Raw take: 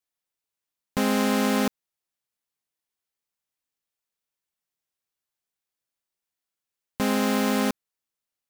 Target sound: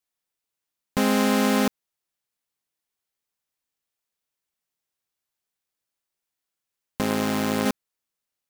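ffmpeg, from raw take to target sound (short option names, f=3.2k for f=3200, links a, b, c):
-filter_complex "[0:a]asettb=1/sr,asplit=3[a][b][c];[a]atrim=end=7.014[d];[b]atrim=start=7.01:end=7.66,asetpts=PTS-STARTPTS,afade=t=in:d=0.004:c=qsin,afade=t=out:st=0.646:d=0.004:c=qsin,tremolo=f=110:d=0.71[e];[c]atrim=start=7.656[f];[d][e]acrossfade=d=0.004:c1=hsin:c2=qsin[g];[g][f]acrossfade=d=0.004:c1=qsin:c2=hsin,volume=2dB"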